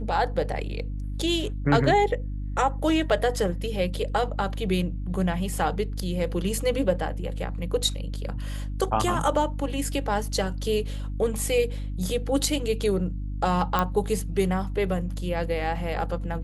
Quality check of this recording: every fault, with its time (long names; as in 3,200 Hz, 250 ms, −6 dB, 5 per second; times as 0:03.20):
mains hum 50 Hz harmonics 6 −31 dBFS
0:13.79: click −10 dBFS